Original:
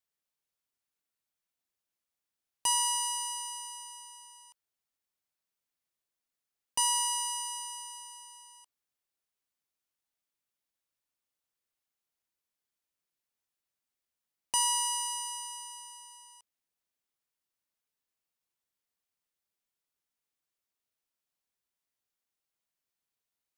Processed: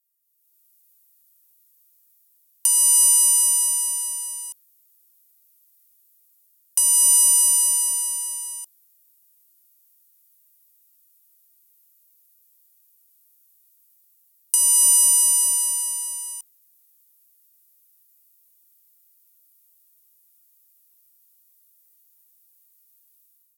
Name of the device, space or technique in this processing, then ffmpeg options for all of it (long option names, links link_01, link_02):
FM broadcast chain: -filter_complex "[0:a]highpass=frequency=66:width=0.5412,highpass=frequency=66:width=1.3066,dynaudnorm=framelen=190:gausssize=5:maxgain=15.5dB,acrossover=split=800|2300[link_01][link_02][link_03];[link_01]acompressor=threshold=-37dB:ratio=4[link_04];[link_02]acompressor=threshold=-36dB:ratio=4[link_05];[link_03]acompressor=threshold=-19dB:ratio=4[link_06];[link_04][link_05][link_06]amix=inputs=3:normalize=0,aemphasis=mode=production:type=50fm,alimiter=limit=-1.5dB:level=0:latency=1:release=354,asoftclip=type=hard:threshold=-4.5dB,lowpass=frequency=15000:width=0.5412,lowpass=frequency=15000:width=1.3066,aemphasis=mode=production:type=50fm,asettb=1/sr,asplit=3[link_07][link_08][link_09];[link_07]atrim=end=3.984[link_10];[link_08]atrim=start=3.98:end=4.44,asetpts=PTS-STARTPTS,afade=type=in:duration=0.004:curve=qsin,afade=type=out:start_time=0.456:duration=0.004:curve=qsin,highpass=frequency=260:poles=1[link_11];[link_09]atrim=start=4.436[link_12];[link_10][link_11]acrossfade=duration=0.004:curve1=hsin:curve2=qsin[link_13];[link_13][link_12]acrossfade=duration=0.004:curve1=qsin:curve2=hsin,volume=-11dB"